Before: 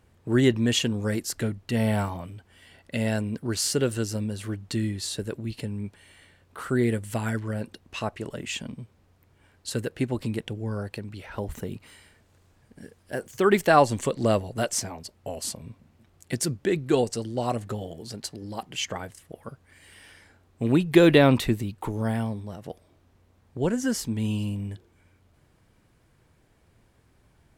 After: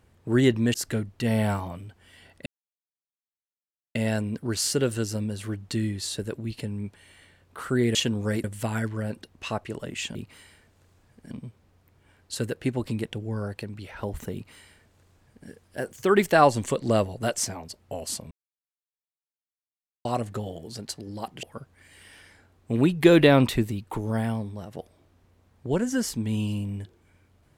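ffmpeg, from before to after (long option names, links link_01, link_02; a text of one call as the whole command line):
ffmpeg -i in.wav -filter_complex "[0:a]asplit=10[link_01][link_02][link_03][link_04][link_05][link_06][link_07][link_08][link_09][link_10];[link_01]atrim=end=0.742[link_11];[link_02]atrim=start=1.228:end=2.95,asetpts=PTS-STARTPTS,afade=type=out:start_time=1.718:duration=0.004:curve=hsin,apad=pad_dur=1.49[link_12];[link_03]atrim=start=2.95:end=6.952,asetpts=PTS-STARTPTS,afade=type=in:duration=0.004:curve=hsin[link_13];[link_04]atrim=start=0.738:end=1.232[link_14];[link_05]atrim=start=6.948:end=8.662[link_15];[link_06]atrim=start=11.678:end=12.842[link_16];[link_07]atrim=start=8.658:end=15.66,asetpts=PTS-STARTPTS,afade=type=out:start_time=6.998:duration=0.004:curve=hsin[link_17];[link_08]atrim=start=15.66:end=17.4,asetpts=PTS-STARTPTS,volume=0[link_18];[link_09]atrim=start=17.4:end=18.782,asetpts=PTS-STARTPTS,afade=type=in:duration=0.004:curve=hsin[link_19];[link_10]atrim=start=19.338[link_20];[link_12][link_13]concat=n=2:v=0:a=1[link_21];[link_11][link_21]acrossfade=duration=0.004:curve1=hsin:curve2=hsin[link_22];[link_22][link_14]acrossfade=duration=0.004:curve1=hsin:curve2=hsin[link_23];[link_23][link_15]acrossfade=duration=0.004:curve1=hsin:curve2=hsin[link_24];[link_24][link_16]acrossfade=duration=0.004:curve1=hsin:curve2=hsin[link_25];[link_17][link_18][link_19]concat=n=3:v=0:a=1[link_26];[link_25][link_26]acrossfade=duration=0.004:curve1=hsin:curve2=hsin[link_27];[link_27][link_20]acrossfade=duration=0.004:curve1=hsin:curve2=hsin" out.wav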